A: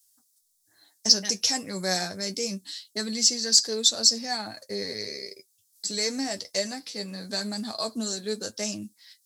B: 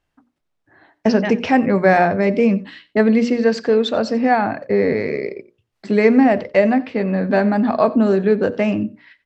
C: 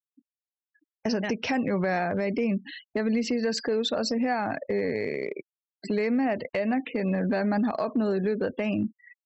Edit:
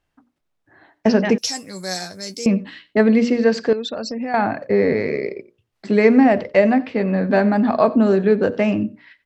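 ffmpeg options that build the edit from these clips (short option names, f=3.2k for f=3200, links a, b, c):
-filter_complex "[1:a]asplit=3[a][b][c];[a]atrim=end=1.382[d];[0:a]atrim=start=1.378:end=2.462[e];[b]atrim=start=2.458:end=3.732[f];[2:a]atrim=start=3.728:end=4.342[g];[c]atrim=start=4.338[h];[d][e]acrossfade=d=0.004:c1=hsin:c2=hsin[i];[i][f]acrossfade=d=0.004:c1=hsin:c2=hsin[j];[j][g]acrossfade=d=0.004:c1=hsin:c2=hsin[k];[k][h]acrossfade=d=0.004:c1=hsin:c2=hsin"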